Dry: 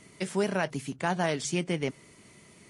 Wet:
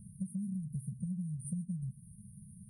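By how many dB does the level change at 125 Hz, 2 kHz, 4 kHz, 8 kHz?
-2.0 dB, under -40 dB, under -40 dB, -12.0 dB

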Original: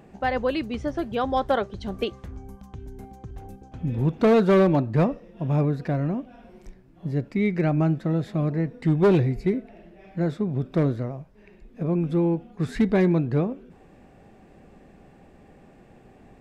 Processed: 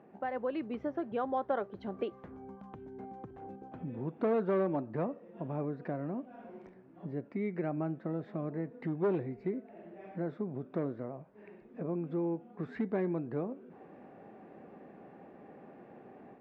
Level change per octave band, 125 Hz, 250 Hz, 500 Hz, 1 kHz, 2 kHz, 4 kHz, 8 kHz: -16.5 dB, -12.0 dB, -10.5 dB, -10.0 dB, -13.5 dB, under -20 dB, n/a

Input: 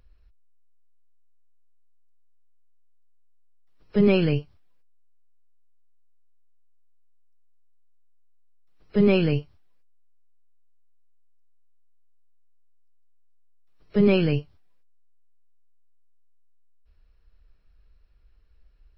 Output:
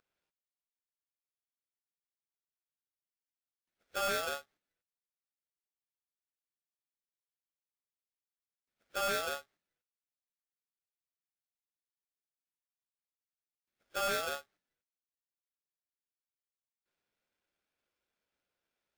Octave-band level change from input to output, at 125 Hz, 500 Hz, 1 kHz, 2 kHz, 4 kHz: -33.0, -15.0, +3.5, -3.5, -3.5 dB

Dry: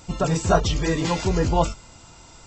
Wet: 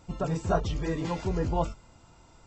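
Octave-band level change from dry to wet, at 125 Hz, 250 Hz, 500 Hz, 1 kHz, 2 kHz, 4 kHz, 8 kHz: -7.0, -7.0, -7.5, -8.0, -10.5, -14.0, -16.0 dB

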